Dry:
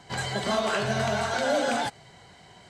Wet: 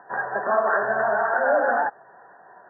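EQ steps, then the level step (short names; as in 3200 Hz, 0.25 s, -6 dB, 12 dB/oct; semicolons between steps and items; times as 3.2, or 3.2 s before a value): HPF 550 Hz 12 dB/oct; brick-wall FIR low-pass 1900 Hz; +7.5 dB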